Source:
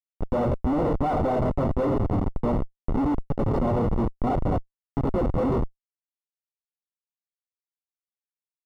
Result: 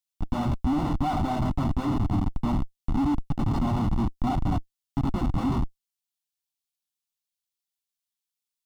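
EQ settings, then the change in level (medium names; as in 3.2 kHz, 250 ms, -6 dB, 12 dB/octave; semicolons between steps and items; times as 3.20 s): FFT filter 300 Hz 0 dB, 490 Hz -22 dB, 760 Hz -1 dB, 1.9 kHz -2 dB, 3.3 kHz +8 dB; 0.0 dB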